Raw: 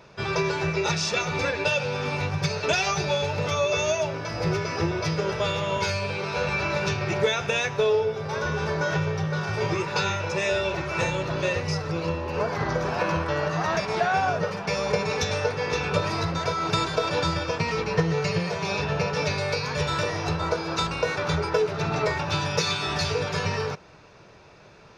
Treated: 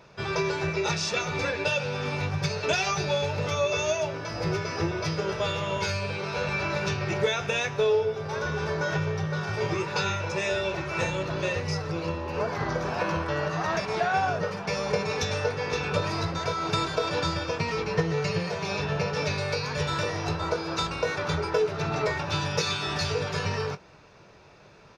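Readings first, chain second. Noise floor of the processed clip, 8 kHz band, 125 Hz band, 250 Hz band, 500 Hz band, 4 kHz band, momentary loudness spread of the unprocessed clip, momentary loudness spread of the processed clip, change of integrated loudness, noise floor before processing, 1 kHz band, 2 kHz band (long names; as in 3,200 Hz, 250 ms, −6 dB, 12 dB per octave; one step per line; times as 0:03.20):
−52 dBFS, −2.5 dB, −2.0 dB, −2.5 dB, −2.0 dB, −2.0 dB, 4 LU, 4 LU, −2.0 dB, −50 dBFS, −2.5 dB, −2.5 dB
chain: double-tracking delay 21 ms −13 dB
level −2.5 dB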